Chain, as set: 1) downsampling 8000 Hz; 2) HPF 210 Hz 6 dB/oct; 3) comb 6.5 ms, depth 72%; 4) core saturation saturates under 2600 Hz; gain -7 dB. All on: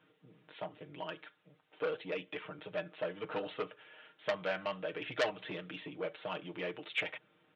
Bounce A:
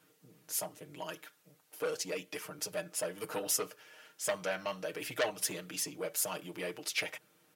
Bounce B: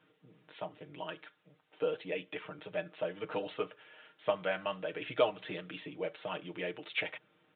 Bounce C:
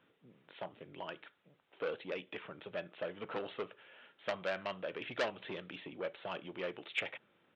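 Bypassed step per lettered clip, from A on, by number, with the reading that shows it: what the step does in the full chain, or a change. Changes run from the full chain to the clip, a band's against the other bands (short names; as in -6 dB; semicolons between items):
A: 1, 4 kHz band +3.5 dB; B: 4, crest factor change -2.0 dB; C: 3, crest factor change -2.0 dB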